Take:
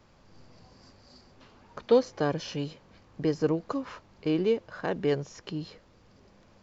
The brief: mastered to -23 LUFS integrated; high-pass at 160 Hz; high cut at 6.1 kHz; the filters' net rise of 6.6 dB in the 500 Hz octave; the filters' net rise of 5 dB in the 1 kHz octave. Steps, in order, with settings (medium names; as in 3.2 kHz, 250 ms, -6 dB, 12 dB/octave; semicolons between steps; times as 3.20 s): high-pass 160 Hz; low-pass 6.1 kHz; peaking EQ 500 Hz +6.5 dB; peaking EQ 1 kHz +4 dB; trim +1 dB